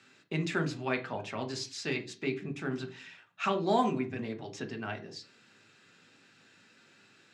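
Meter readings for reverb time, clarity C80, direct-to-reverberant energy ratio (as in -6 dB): 0.40 s, 21.0 dB, 5.5 dB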